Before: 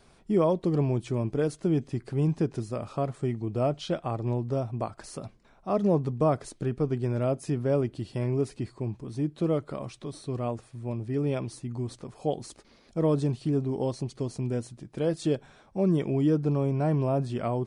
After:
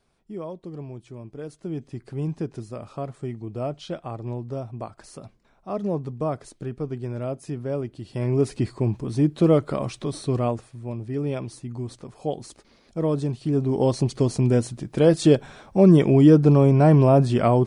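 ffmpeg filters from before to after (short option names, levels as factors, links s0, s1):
-af "volume=8.41,afade=t=in:st=1.32:d=0.8:silence=0.375837,afade=t=in:st=8.02:d=0.6:silence=0.266073,afade=t=out:st=10.3:d=0.47:silence=0.398107,afade=t=in:st=13.41:d=0.64:silence=0.334965"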